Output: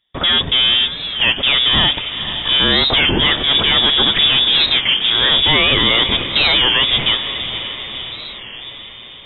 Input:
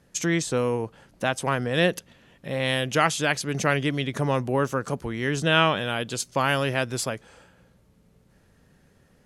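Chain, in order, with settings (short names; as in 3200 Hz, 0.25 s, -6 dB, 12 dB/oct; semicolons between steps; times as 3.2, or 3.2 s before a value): in parallel at -1.5 dB: negative-ratio compressor -25 dBFS; on the sum: sample leveller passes 5; on a send: diffused feedback echo 0.51 s, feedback 61%, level -10 dB; on the sum: inverted band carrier 3600 Hz; low shelf 480 Hz +9 dB; record warp 33 1/3 rpm, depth 160 cents; gain -7 dB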